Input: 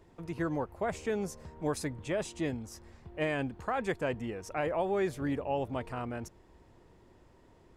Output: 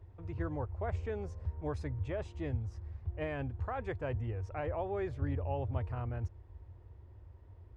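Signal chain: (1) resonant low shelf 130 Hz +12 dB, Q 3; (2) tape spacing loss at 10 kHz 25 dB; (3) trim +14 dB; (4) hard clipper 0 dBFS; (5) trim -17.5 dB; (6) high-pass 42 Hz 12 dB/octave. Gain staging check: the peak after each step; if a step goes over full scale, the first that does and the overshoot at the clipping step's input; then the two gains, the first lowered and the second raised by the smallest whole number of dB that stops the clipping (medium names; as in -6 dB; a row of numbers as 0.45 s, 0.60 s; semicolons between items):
-18.0 dBFS, -19.0 dBFS, -5.0 dBFS, -5.0 dBFS, -22.5 dBFS, -22.5 dBFS; nothing clips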